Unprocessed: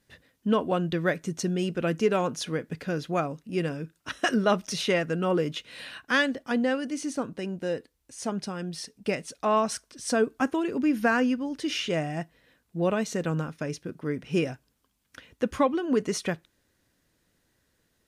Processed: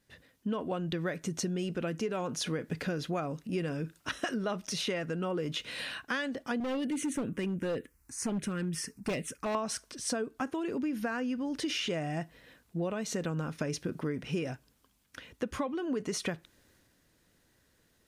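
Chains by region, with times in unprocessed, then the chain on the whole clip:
0:06.60–0:09.55: phaser swept by the level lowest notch 490 Hz, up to 1,400 Hz, full sweep at −23 dBFS + hard clipping −29 dBFS
whole clip: speech leveller within 5 dB 0.5 s; transient designer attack 0 dB, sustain +4 dB; downward compressor, threshold −30 dBFS

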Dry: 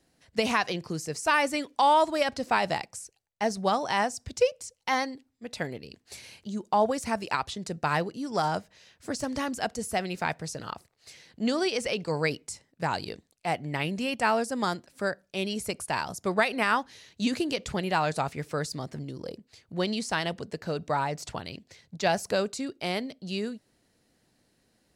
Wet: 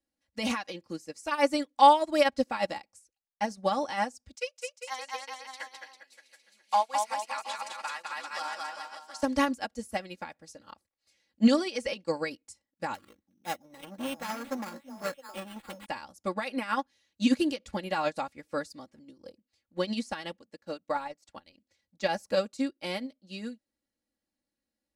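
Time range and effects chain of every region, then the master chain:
0:04.35–0:09.23: high-pass filter 1,100 Hz + bouncing-ball delay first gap 210 ms, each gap 0.9×, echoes 6, each echo −2 dB
0:12.94–0:15.86: echo through a band-pass that steps 333 ms, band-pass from 190 Hz, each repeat 1.4 octaves, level −4 dB + sample-rate reduction 5,900 Hz + saturating transformer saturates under 2,000 Hz
0:20.37–0:21.57: low-shelf EQ 120 Hz −7 dB + transient designer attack −1 dB, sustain −9 dB
whole clip: brickwall limiter −20 dBFS; comb filter 3.6 ms, depth 82%; expander for the loud parts 2.5 to 1, over −40 dBFS; level +7 dB

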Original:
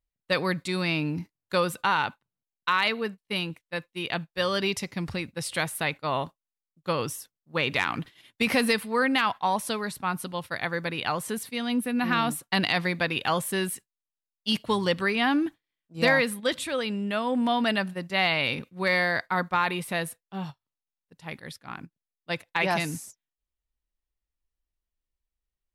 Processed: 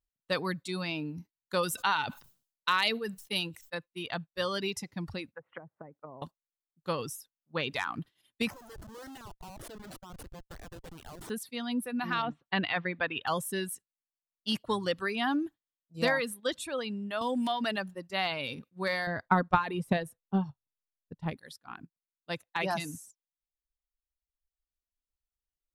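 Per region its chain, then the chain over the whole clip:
0:01.63–0:03.75: high-shelf EQ 2,500 Hz +8.5 dB + level that may fall only so fast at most 110 dB per second
0:05.32–0:06.22: Butterworth low-pass 2,100 Hz + treble cut that deepens with the level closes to 350 Hz, closed at −28.5 dBFS + spectral tilt +4 dB per octave
0:08.50–0:11.30: low-shelf EQ 99 Hz −5.5 dB + downward compressor 5 to 1, threshold −35 dBFS + comparator with hysteresis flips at −37 dBFS
0:12.22–0:13.27: low-pass filter 3,300 Hz 24 dB per octave + dynamic equaliser 1,800 Hz, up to +4 dB, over −36 dBFS, Q 1.2
0:17.21–0:17.95: slack as between gear wheels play −51 dBFS + multiband upward and downward compressor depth 70%
0:19.07–0:21.38: spectral tilt −2.5 dB per octave + transient designer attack +10 dB, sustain +1 dB + one half of a high-frequency compander decoder only
whole clip: reverb reduction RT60 1.4 s; parametric band 2,200 Hz −5.5 dB 0.43 octaves; level −4.5 dB

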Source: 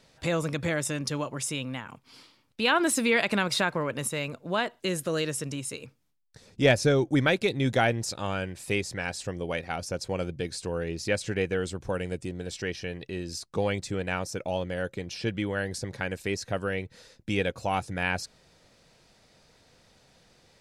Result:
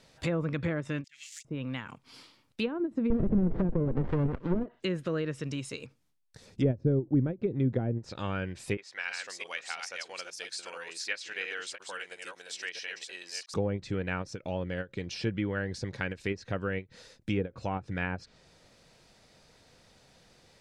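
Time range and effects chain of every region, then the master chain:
0:01.04–0:01.45: spike at every zero crossing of −31.5 dBFS + elliptic high-pass filter 2,000 Hz, stop band 50 dB + parametric band 7,200 Hz +14.5 dB 0.69 octaves
0:03.10–0:04.66: mid-hump overdrive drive 20 dB, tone 5,600 Hz, clips at −11 dBFS + windowed peak hold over 33 samples
0:08.77–0:13.54: delay that plays each chunk backwards 335 ms, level −4 dB + high-pass filter 1,100 Hz
whole clip: treble cut that deepens with the level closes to 400 Hz, closed at −20.5 dBFS; dynamic equaliser 720 Hz, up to −7 dB, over −46 dBFS, Q 1.4; every ending faded ahead of time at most 340 dB per second

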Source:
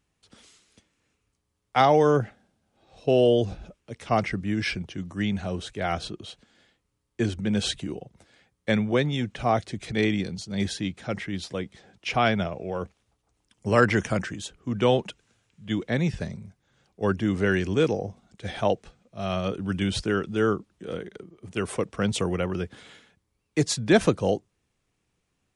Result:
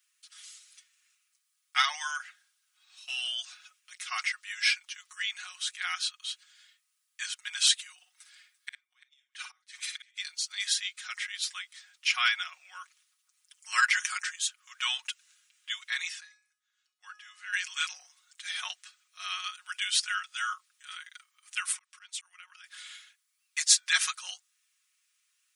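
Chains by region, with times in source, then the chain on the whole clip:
0:07.94–0:10.18: notch filter 6,900 Hz, Q 21 + gate with flip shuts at −20 dBFS, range −39 dB + multi-tap delay 50/58/341 ms −13/−9/−19.5 dB
0:16.20–0:17.53: high-shelf EQ 6,500 Hz −5.5 dB + tuned comb filter 420 Hz, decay 0.45 s, mix 80%
0:21.72–0:22.64: volume swells 441 ms + downward compressor 4 to 1, threshold −40 dBFS
whole clip: Butterworth high-pass 1,200 Hz 36 dB per octave; spectral tilt +3.5 dB per octave; comb filter 5.5 ms, depth 84%; level −3.5 dB

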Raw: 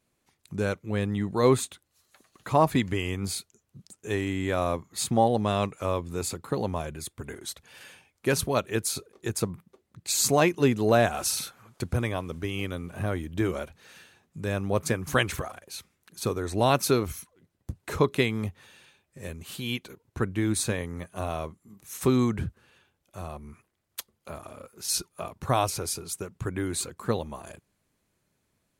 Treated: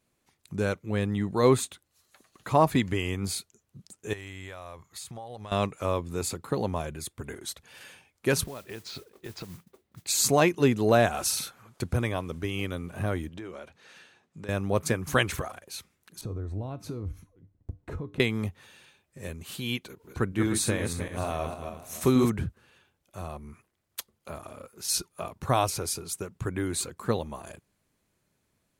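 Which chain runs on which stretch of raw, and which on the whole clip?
0:04.13–0:05.52: parametric band 250 Hz −13 dB 1.7 octaves + downward compressor 10 to 1, threshold −37 dBFS
0:08.44–0:10.07: low-pass filter 4,400 Hz 24 dB per octave + noise that follows the level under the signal 13 dB + downward compressor 16 to 1, threshold −35 dBFS
0:13.29–0:14.49: high-pass filter 230 Hz 6 dB per octave + high-frequency loss of the air 53 metres + downward compressor 4 to 1, threshold −38 dBFS
0:16.21–0:18.20: spectral tilt −4.5 dB per octave + downward compressor, threshold −26 dBFS + tuned comb filter 98 Hz, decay 0.29 s, harmonics odd
0:19.86–0:22.30: feedback delay that plays each chunk backwards 153 ms, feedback 52%, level −5.5 dB + upward compression, threshold −43 dBFS
whole clip: no processing

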